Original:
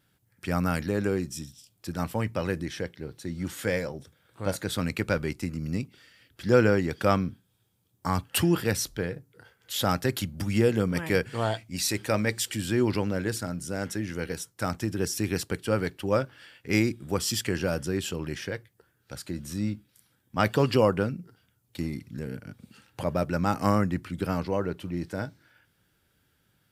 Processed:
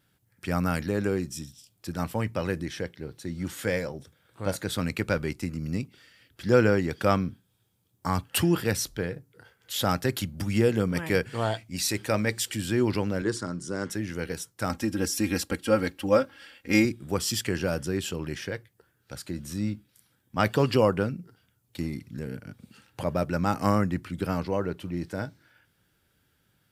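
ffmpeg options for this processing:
-filter_complex "[0:a]asettb=1/sr,asplit=3[a][b][c];[a]atrim=end=13.224[d];[b]atrim=start=13.22:end=13.9,asetpts=PTS-STARTPTS,afade=t=in:d=0.004:c=qsin,afade=t=out:st=0.676:d=0.004:c=qsin,highpass=110,equalizer=f=360:t=q:w=4:g=7,equalizer=f=710:t=q:w=4:g=-7,equalizer=f=1.1k:t=q:w=4:g=7,equalizer=f=2.5k:t=q:w=4:g=-8,lowpass=f=8.7k:w=0.5412,lowpass=f=8.7k:w=1.3066[e];[c]atrim=start=13.896[f];[d][e]acrossfade=d=0.004:c1=hsin:c2=qsin[g];[g][f]acrossfade=d=0.004:c1=qsin:c2=hsin,asettb=1/sr,asplit=3[h][i][j];[h]atrim=end=14.694[k];[i]atrim=start=14.69:end=16.85,asetpts=PTS-STARTPTS,afade=t=in:d=0.004:c=qsin,afade=t=out:st=2.156:d=0.004:c=qsin,aecho=1:1:3.7:0.8,atrim=end_sample=95256[l];[j]atrim=start=16.846[m];[k][l]acrossfade=d=0.004:c1=hsin:c2=qsin[n];[n][m]acrossfade=d=0.004:c1=qsin:c2=hsin"

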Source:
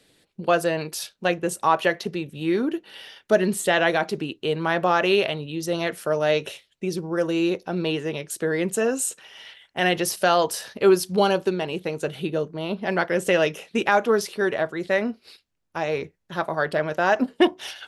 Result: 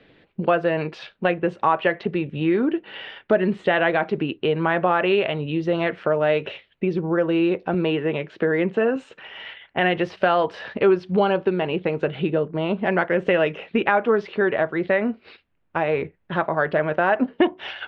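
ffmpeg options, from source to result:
-filter_complex "[0:a]asettb=1/sr,asplit=3[a][b][c];[a]atrim=end=7.744[d];[b]atrim=start=7.74:end=8.96,asetpts=PTS-STARTPTS,afade=t=in:d=0.004:c=qsin,afade=t=out:st=1.216:d=0.004:c=qsin,highpass=120,lowpass=4.6k[e];[c]atrim=start=8.956[f];[d][e]acrossfade=d=0.004:c1=hsin:c2=qsin[g];[g][f]acrossfade=d=0.004:c1=qsin:c2=hsin,acompressor=threshold=-30dB:ratio=2,lowpass=f=2.8k:w=0.5412,lowpass=f=2.8k:w=1.3066,volume=8.5dB"

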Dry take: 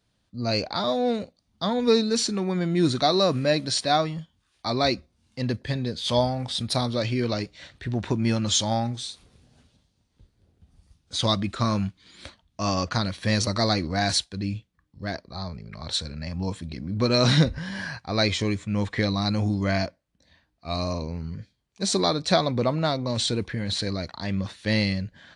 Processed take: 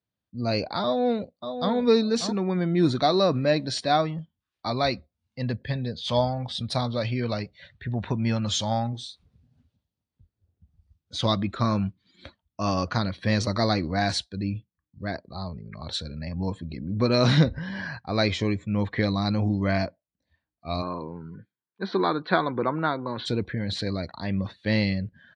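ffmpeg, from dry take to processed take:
-filter_complex "[0:a]asplit=2[a][b];[b]afade=t=in:st=0.83:d=0.01,afade=t=out:st=1.73:d=0.01,aecho=0:1:590|1180:0.398107|0.0597161[c];[a][c]amix=inputs=2:normalize=0,asettb=1/sr,asplit=3[d][e][f];[d]atrim=end=4.704[g];[e]atrim=start=4.7:end=8.93,asetpts=PTS-STARTPTS,afade=t=in:d=0.004:c=qsin,afade=t=out:st=4.226:d=0.004:c=qsin,equalizer=f=330:t=o:w=0.69:g=-7.5[h];[f]atrim=start=8.926[i];[g][h]acrossfade=d=0.004:c1=hsin:c2=qsin[j];[j][i]acrossfade=d=0.004:c1=qsin:c2=hsin,asplit=3[k][l][m];[k]afade=t=out:st=20.81:d=0.02[n];[l]highpass=200,equalizer=f=240:t=q:w=4:g=-4,equalizer=f=340:t=q:w=4:g=4,equalizer=f=610:t=q:w=4:g=-8,equalizer=f=980:t=q:w=4:g=5,equalizer=f=1.5k:t=q:w=4:g=8,equalizer=f=2.6k:t=q:w=4:g=-5,lowpass=f=3.4k:w=0.5412,lowpass=f=3.4k:w=1.3066,afade=t=in:st=20.81:d=0.02,afade=t=out:st=23.25:d=0.02[o];[m]afade=t=in:st=23.25:d=0.02[p];[n][o][p]amix=inputs=3:normalize=0,afftdn=nr=16:nf=-46,highpass=62,aemphasis=mode=reproduction:type=50fm"

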